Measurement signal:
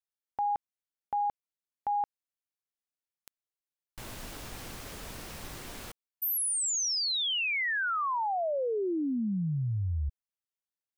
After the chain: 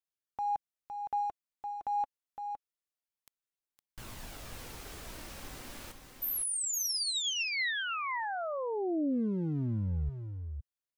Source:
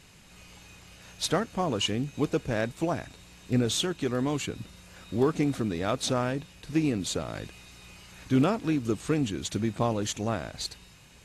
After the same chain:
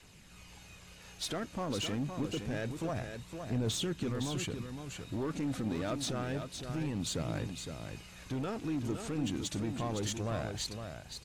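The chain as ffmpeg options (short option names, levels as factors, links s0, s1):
-af "adynamicequalizer=threshold=0.00708:dfrequency=130:dqfactor=1:tfrequency=130:tqfactor=1:attack=5:release=100:ratio=0.375:range=2:mode=boostabove:tftype=bell,alimiter=limit=0.075:level=0:latency=1:release=10,asoftclip=type=hard:threshold=0.0501,aphaser=in_gain=1:out_gain=1:delay=4:decay=0.29:speed=0.27:type=triangular,aecho=1:1:512:0.447,volume=0.631"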